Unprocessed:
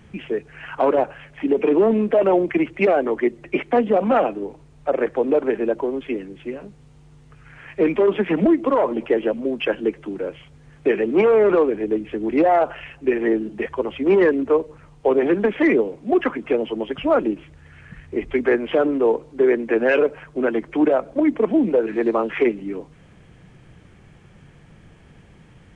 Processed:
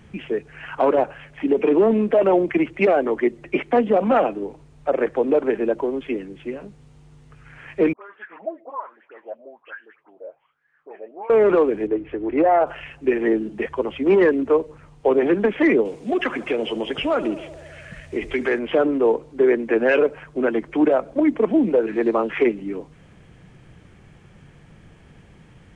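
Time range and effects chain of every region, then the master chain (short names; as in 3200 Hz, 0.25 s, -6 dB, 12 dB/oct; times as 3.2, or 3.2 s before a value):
7.93–11.3 bell 170 Hz -4 dB 2.9 oct + wah 1.2 Hz 600–1700 Hz, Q 7.9 + dispersion highs, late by 70 ms, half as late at 1500 Hz
11.87–12.67 LPF 2200 Hz + bell 210 Hz -13 dB 0.38 oct
15.85–18.59 high shelf 2100 Hz +11.5 dB + compressor 2:1, threshold -20 dBFS + narrowing echo 75 ms, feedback 81%, band-pass 630 Hz, level -14 dB
whole clip: dry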